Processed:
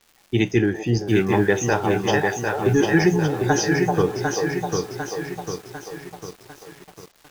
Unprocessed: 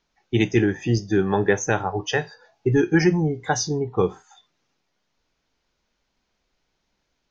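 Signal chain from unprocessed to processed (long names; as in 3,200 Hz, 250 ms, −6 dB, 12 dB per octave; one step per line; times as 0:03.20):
surface crackle 350 per second −41 dBFS
echo through a band-pass that steps 387 ms, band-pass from 670 Hz, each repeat 1.4 octaves, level 0 dB
feedback echo at a low word length 749 ms, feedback 55%, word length 7 bits, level −4.5 dB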